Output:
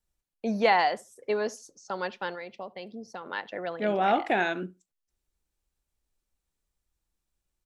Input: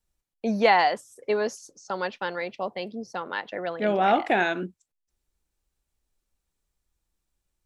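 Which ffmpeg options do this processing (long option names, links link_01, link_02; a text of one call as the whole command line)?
ffmpeg -i in.wav -filter_complex "[0:a]asplit=3[link_01][link_02][link_03];[link_01]afade=type=out:start_time=2.34:duration=0.02[link_04];[link_02]acompressor=threshold=-35dB:ratio=2.5,afade=type=in:start_time=2.34:duration=0.02,afade=type=out:start_time=3.24:duration=0.02[link_05];[link_03]afade=type=in:start_time=3.24:duration=0.02[link_06];[link_04][link_05][link_06]amix=inputs=3:normalize=0,asplit=2[link_07][link_08];[link_08]adelay=71,lowpass=frequency=2100:poles=1,volume=-22dB,asplit=2[link_09][link_10];[link_10]adelay=71,lowpass=frequency=2100:poles=1,volume=0.16[link_11];[link_07][link_09][link_11]amix=inputs=3:normalize=0,volume=-3dB" out.wav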